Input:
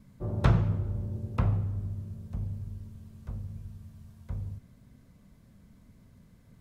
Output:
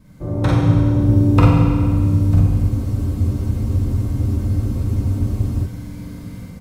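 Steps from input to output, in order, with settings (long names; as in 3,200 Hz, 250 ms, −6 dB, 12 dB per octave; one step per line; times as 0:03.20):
downward compressor 10 to 1, threshold −33 dBFS, peak gain reduction 16.5 dB
ambience of single reflections 45 ms −3.5 dB, 55 ms −5.5 dB
automatic gain control gain up to 12 dB
convolution reverb RT60 2.0 s, pre-delay 3 ms, DRR −3 dB
frozen spectrum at 0:02.72, 2.93 s
level +5.5 dB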